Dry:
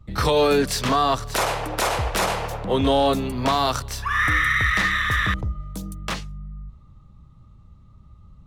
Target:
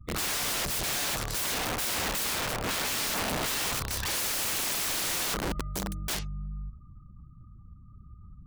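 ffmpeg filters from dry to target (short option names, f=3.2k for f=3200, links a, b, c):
-af "aeval=exprs='(mod(16.8*val(0)+1,2)-1)/16.8':c=same,afftfilt=real='re*gte(hypot(re,im),0.002)':imag='im*gte(hypot(re,im),0.002)':win_size=1024:overlap=0.75,volume=-1dB"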